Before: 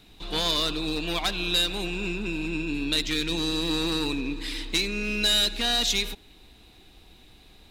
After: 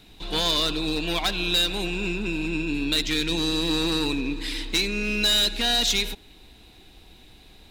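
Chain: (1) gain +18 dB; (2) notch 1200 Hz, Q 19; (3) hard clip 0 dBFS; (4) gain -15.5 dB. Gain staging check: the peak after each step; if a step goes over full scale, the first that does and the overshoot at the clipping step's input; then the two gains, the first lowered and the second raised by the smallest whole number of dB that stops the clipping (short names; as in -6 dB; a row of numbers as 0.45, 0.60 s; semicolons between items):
+7.5, +7.5, 0.0, -15.5 dBFS; step 1, 7.5 dB; step 1 +10 dB, step 4 -7.5 dB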